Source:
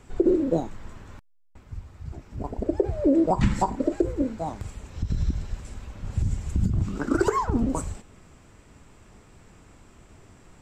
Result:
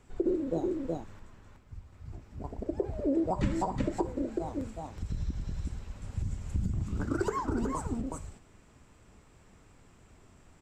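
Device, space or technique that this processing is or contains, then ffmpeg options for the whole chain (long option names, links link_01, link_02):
ducked delay: -filter_complex "[0:a]asplit=3[link_01][link_02][link_03];[link_02]adelay=370,volume=-2dB[link_04];[link_03]apad=whole_len=484603[link_05];[link_04][link_05]sidechaincompress=threshold=-25dB:ratio=8:attack=44:release=187[link_06];[link_01][link_06]amix=inputs=2:normalize=0,volume=-8.5dB"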